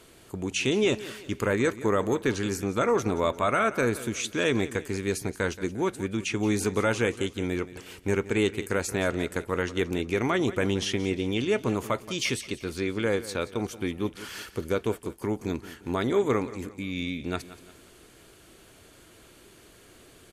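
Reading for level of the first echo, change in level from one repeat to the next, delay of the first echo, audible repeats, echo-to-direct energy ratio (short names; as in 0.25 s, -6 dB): -16.0 dB, -7.5 dB, 0.176 s, 3, -15.0 dB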